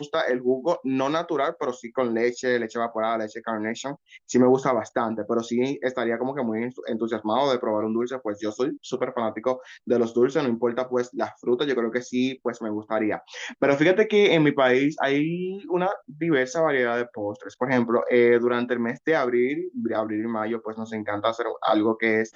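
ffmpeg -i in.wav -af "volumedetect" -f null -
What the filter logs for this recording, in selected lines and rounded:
mean_volume: -24.1 dB
max_volume: -7.1 dB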